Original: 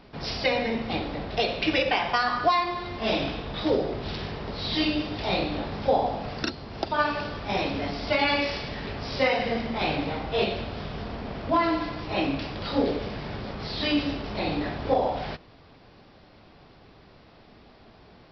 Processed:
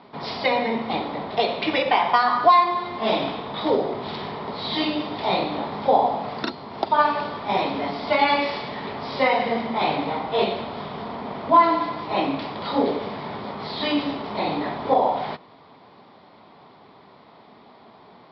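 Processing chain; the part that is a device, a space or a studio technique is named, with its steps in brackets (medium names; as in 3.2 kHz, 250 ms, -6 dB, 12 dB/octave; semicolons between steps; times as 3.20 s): kitchen radio (cabinet simulation 220–3900 Hz, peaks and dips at 320 Hz -5 dB, 520 Hz -4 dB, 970 Hz +6 dB, 1.6 kHz -7 dB, 2.7 kHz -9 dB); trim +6 dB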